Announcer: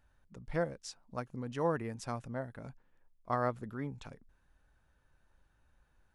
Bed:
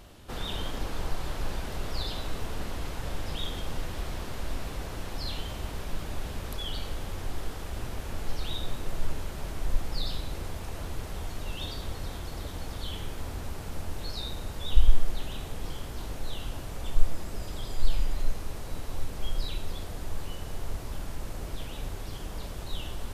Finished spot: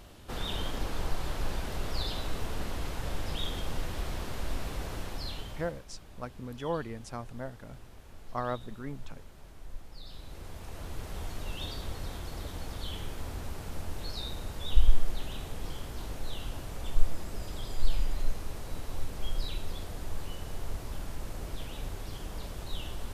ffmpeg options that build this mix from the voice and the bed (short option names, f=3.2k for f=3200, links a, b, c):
-filter_complex "[0:a]adelay=5050,volume=-1dB[a];[1:a]volume=13dB,afade=t=out:st=4.94:d=0.9:silence=0.177828,afade=t=in:st=10.02:d=1.2:silence=0.211349[b];[a][b]amix=inputs=2:normalize=0"